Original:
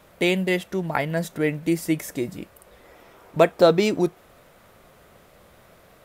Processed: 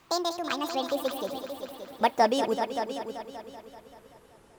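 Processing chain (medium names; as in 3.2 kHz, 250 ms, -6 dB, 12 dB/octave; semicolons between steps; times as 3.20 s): gliding tape speed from 195% -> 69%; multi-head delay 192 ms, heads all three, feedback 43%, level -12 dB; trim -6.5 dB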